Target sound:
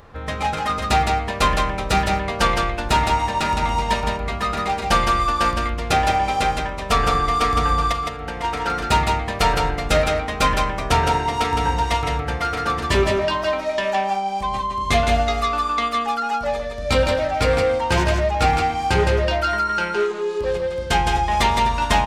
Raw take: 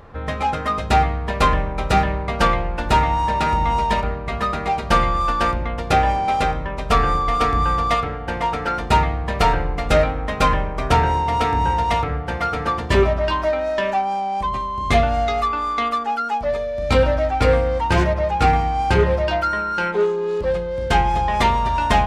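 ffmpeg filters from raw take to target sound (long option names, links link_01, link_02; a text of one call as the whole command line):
ffmpeg -i in.wav -filter_complex "[0:a]highshelf=frequency=2900:gain=9.5,asplit=3[link_01][link_02][link_03];[link_01]afade=type=out:start_time=7.91:duration=0.02[link_04];[link_02]acompressor=threshold=-23dB:ratio=10,afade=type=in:start_time=7.91:duration=0.02,afade=type=out:start_time=8.43:duration=0.02[link_05];[link_03]afade=type=in:start_time=8.43:duration=0.02[link_06];[link_04][link_05][link_06]amix=inputs=3:normalize=0,asplit=2[link_07][link_08];[link_08]aecho=0:1:163:0.596[link_09];[link_07][link_09]amix=inputs=2:normalize=0,volume=-3dB" out.wav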